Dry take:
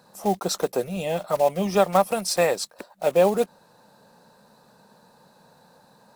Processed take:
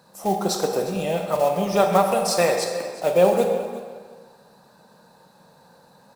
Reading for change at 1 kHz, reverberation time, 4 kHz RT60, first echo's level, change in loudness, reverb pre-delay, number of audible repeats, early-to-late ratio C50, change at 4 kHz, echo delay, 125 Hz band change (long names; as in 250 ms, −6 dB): +2.5 dB, 1.6 s, 1.4 s, −16.5 dB, +2.0 dB, 4 ms, 2, 4.5 dB, +2.0 dB, 358 ms, +2.5 dB